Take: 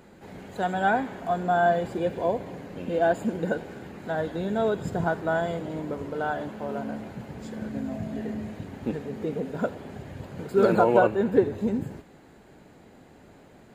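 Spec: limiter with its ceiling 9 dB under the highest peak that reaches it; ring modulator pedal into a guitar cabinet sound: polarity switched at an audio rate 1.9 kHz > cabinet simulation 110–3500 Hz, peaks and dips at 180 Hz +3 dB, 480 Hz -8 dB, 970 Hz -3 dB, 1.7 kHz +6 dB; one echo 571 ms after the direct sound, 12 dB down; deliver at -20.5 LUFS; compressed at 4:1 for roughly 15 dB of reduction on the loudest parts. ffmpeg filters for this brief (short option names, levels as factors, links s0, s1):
-af "acompressor=threshold=0.0224:ratio=4,alimiter=level_in=1.88:limit=0.0631:level=0:latency=1,volume=0.531,aecho=1:1:571:0.251,aeval=exprs='val(0)*sgn(sin(2*PI*1900*n/s))':c=same,highpass=110,equalizer=f=180:t=q:w=4:g=3,equalizer=f=480:t=q:w=4:g=-8,equalizer=f=970:t=q:w=4:g=-3,equalizer=f=1700:t=q:w=4:g=6,lowpass=f=3500:w=0.5412,lowpass=f=3500:w=1.3066,volume=5.31"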